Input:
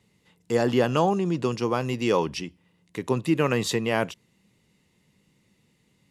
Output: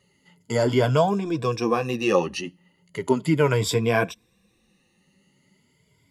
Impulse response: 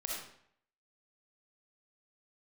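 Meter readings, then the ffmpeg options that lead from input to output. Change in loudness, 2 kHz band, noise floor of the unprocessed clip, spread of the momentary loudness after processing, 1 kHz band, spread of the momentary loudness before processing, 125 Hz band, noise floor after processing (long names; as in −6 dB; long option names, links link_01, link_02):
+2.0 dB, +2.5 dB, −67 dBFS, 11 LU, +1.5 dB, 12 LU, +4.0 dB, −66 dBFS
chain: -af "afftfilt=real='re*pow(10,14/40*sin(2*PI*(1.7*log(max(b,1)*sr/1024/100)/log(2)-(0.38)*(pts-256)/sr)))':imag='im*pow(10,14/40*sin(2*PI*(1.7*log(max(b,1)*sr/1024/100)/log(2)-(0.38)*(pts-256)/sr)))':win_size=1024:overlap=0.75,flanger=delay=1.7:depth=9.2:regen=-23:speed=0.68:shape=sinusoidal,volume=3.5dB"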